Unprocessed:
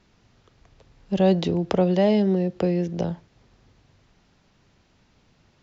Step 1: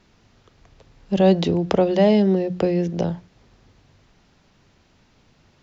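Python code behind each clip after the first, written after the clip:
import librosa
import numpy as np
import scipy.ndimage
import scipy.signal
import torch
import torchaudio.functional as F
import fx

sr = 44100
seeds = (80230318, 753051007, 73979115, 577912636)

y = fx.hum_notches(x, sr, base_hz=60, count=3)
y = y * librosa.db_to_amplitude(3.5)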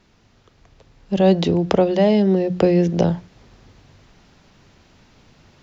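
y = fx.rider(x, sr, range_db=10, speed_s=0.5)
y = y * librosa.db_to_amplitude(2.5)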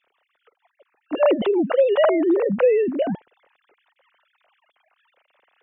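y = fx.sine_speech(x, sr)
y = y * librosa.db_to_amplitude(-2.0)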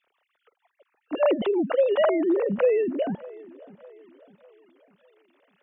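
y = fx.echo_wet_lowpass(x, sr, ms=602, feedback_pct=45, hz=2500.0, wet_db=-21)
y = y * librosa.db_to_amplitude(-4.0)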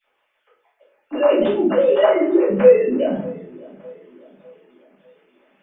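y = fx.room_shoebox(x, sr, seeds[0], volume_m3=62.0, walls='mixed', distance_m=2.2)
y = y * librosa.db_to_amplitude(-4.5)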